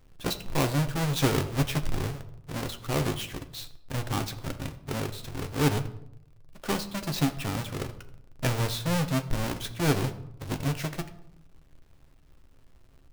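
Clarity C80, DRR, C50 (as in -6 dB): 16.5 dB, 7.0 dB, 14.0 dB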